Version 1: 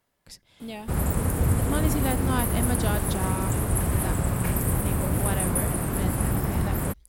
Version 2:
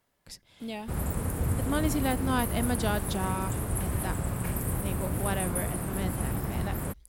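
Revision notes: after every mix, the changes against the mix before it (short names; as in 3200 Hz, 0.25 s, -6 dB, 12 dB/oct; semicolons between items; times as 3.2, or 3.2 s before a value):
background -6.0 dB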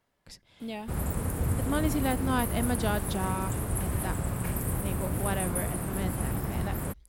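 speech: add high shelf 6800 Hz -8.5 dB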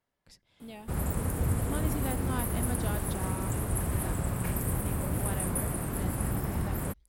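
speech -8.0 dB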